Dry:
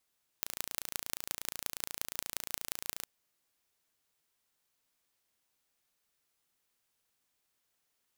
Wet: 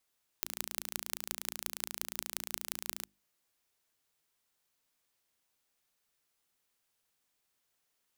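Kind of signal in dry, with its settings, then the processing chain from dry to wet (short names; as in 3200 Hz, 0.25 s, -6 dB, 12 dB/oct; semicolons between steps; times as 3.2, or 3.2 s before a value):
pulse train 28.4/s, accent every 5, -5.5 dBFS 2.63 s
notches 50/100/150/200/250/300/350 Hz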